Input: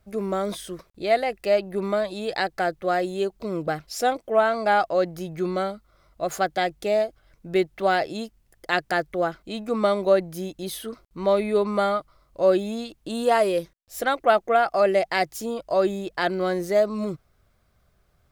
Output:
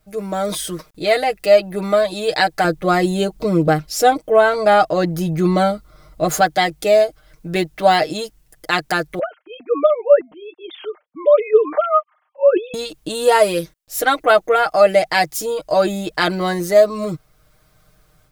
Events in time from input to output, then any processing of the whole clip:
2.64–6.41 low shelf 480 Hz +7 dB
9.19–12.74 sine-wave speech
whole clip: high shelf 4600 Hz +6.5 dB; comb 6.5 ms, depth 76%; AGC gain up to 7.5 dB

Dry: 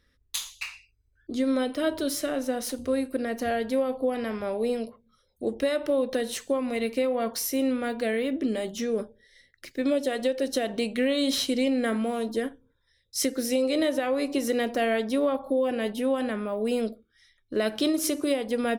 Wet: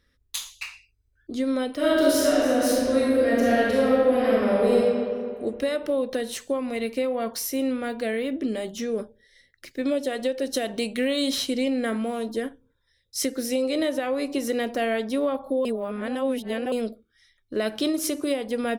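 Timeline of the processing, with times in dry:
1.76–4.79 reverb throw, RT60 2.2 s, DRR -7 dB
10.54–11.29 high shelf 4200 Hz +6 dB
15.65–16.72 reverse

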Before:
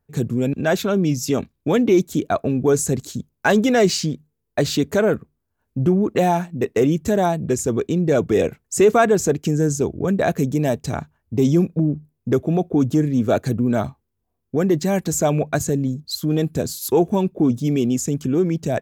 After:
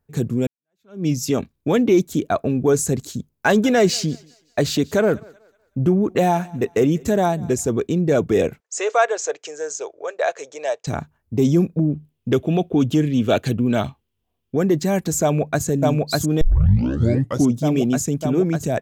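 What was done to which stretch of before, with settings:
0.47–1.06 fade in exponential
3.31–7.69 thinning echo 0.187 s, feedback 37%, level -23 dB
8.6–10.87 elliptic band-pass 520–7000 Hz
11.9–14.57 bell 3000 Hz +13.5 dB 0.71 oct
15.22–15.65 echo throw 0.6 s, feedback 80%, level -1 dB
16.41 tape start 1.11 s

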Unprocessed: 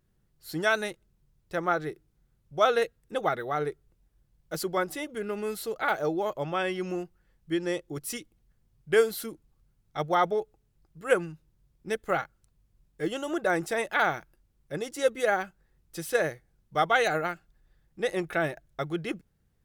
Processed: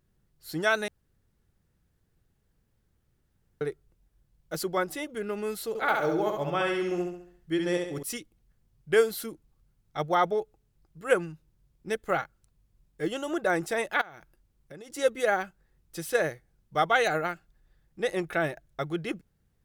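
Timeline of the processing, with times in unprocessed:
0.88–3.61 room tone
5.68–8.03 feedback echo 68 ms, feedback 45%, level -4 dB
14.01–14.9 compressor 12:1, threshold -41 dBFS

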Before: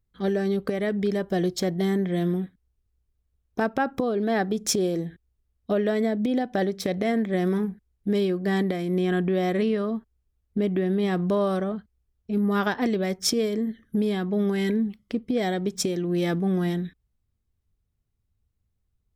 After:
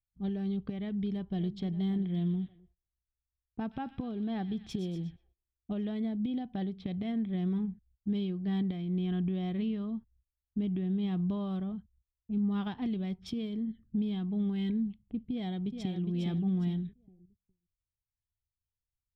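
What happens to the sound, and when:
0.77–1.57 echo throw 0.58 s, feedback 20%, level -14 dB
2.08–5.85 thin delay 0.123 s, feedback 69%, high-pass 2100 Hz, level -9.5 dB
15.31–16.02 echo throw 0.41 s, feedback 35%, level -6 dB
whole clip: low-pass opened by the level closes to 310 Hz, open at -21.5 dBFS; gate -59 dBFS, range -19 dB; EQ curve 120 Hz 0 dB, 230 Hz -7 dB, 550 Hz -23 dB, 820 Hz -13 dB, 1700 Hz -22 dB, 3200 Hz -8 dB, 6200 Hz -29 dB

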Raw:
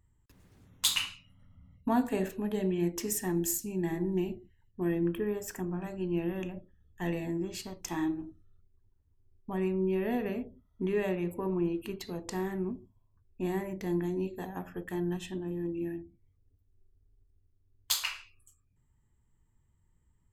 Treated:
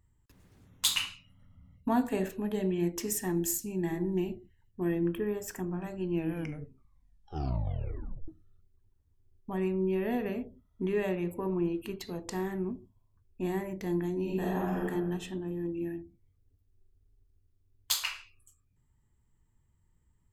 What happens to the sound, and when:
6.15 tape stop 2.13 s
14.22–14.83 reverb throw, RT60 1.3 s, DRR -6.5 dB

